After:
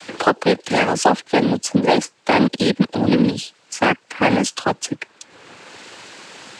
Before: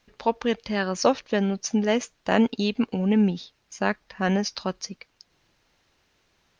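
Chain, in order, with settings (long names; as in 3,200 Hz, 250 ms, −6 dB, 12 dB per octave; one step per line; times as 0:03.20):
high-pass filter 220 Hz 12 dB per octave
cochlear-implant simulation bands 8
multiband upward and downward compressor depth 70%
level +8.5 dB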